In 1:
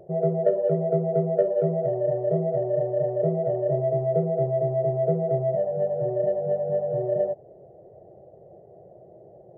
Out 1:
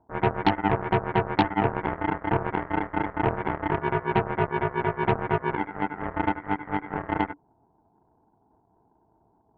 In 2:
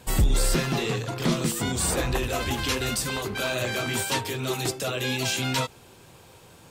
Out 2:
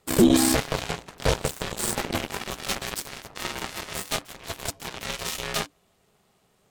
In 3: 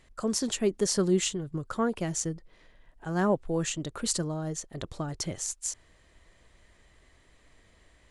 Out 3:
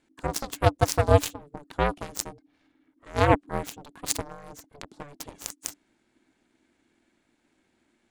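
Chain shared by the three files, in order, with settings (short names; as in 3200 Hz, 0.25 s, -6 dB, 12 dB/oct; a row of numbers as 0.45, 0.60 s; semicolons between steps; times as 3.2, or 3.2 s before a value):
added harmonics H 5 -10 dB, 7 -8 dB, 8 -26 dB, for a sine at -9 dBFS; ring modulator 290 Hz; match loudness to -27 LUFS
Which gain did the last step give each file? +0.5, +2.0, +7.5 dB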